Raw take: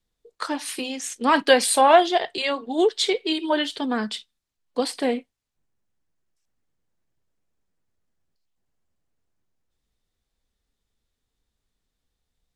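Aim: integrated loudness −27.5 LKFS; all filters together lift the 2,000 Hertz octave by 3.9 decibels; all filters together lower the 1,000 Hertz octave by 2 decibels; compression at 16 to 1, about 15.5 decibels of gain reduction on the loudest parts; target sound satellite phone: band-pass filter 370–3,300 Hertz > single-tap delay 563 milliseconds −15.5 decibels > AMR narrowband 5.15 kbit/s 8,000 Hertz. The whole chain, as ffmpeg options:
ffmpeg -i in.wav -af "equalizer=frequency=1000:width_type=o:gain=-4,equalizer=frequency=2000:width_type=o:gain=7,acompressor=threshold=-25dB:ratio=16,highpass=370,lowpass=3300,aecho=1:1:563:0.168,volume=7.5dB" -ar 8000 -c:a libopencore_amrnb -b:a 5150 out.amr

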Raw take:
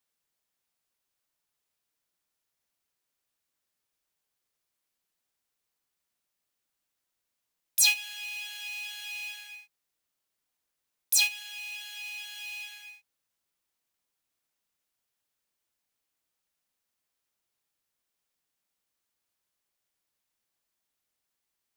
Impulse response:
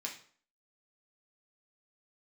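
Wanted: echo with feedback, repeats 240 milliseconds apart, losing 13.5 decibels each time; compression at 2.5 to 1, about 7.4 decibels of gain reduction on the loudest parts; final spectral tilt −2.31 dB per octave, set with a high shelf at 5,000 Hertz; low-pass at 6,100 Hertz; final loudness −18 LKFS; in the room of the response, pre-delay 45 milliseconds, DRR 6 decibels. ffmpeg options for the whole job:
-filter_complex "[0:a]lowpass=6100,highshelf=frequency=5000:gain=7.5,acompressor=threshold=-28dB:ratio=2.5,aecho=1:1:240|480:0.211|0.0444,asplit=2[link_01][link_02];[1:a]atrim=start_sample=2205,adelay=45[link_03];[link_02][link_03]afir=irnorm=-1:irlink=0,volume=-6dB[link_04];[link_01][link_04]amix=inputs=2:normalize=0,volume=13.5dB"

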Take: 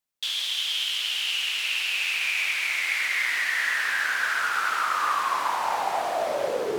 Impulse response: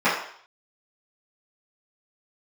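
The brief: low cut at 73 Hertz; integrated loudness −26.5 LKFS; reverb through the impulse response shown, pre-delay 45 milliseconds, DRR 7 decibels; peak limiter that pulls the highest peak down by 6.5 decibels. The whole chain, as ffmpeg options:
-filter_complex "[0:a]highpass=73,alimiter=limit=-19dB:level=0:latency=1,asplit=2[link_01][link_02];[1:a]atrim=start_sample=2205,adelay=45[link_03];[link_02][link_03]afir=irnorm=-1:irlink=0,volume=-27dB[link_04];[link_01][link_04]amix=inputs=2:normalize=0,volume=-0.5dB"

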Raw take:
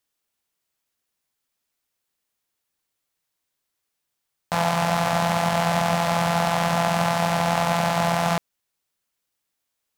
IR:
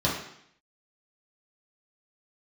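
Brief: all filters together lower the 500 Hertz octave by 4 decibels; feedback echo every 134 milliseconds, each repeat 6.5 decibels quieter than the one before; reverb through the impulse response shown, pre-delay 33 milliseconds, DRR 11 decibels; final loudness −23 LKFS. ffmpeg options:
-filter_complex "[0:a]equalizer=frequency=500:width_type=o:gain=-6.5,aecho=1:1:134|268|402|536|670|804:0.473|0.222|0.105|0.0491|0.0231|0.0109,asplit=2[link_01][link_02];[1:a]atrim=start_sample=2205,adelay=33[link_03];[link_02][link_03]afir=irnorm=-1:irlink=0,volume=-23dB[link_04];[link_01][link_04]amix=inputs=2:normalize=0,volume=-1dB"

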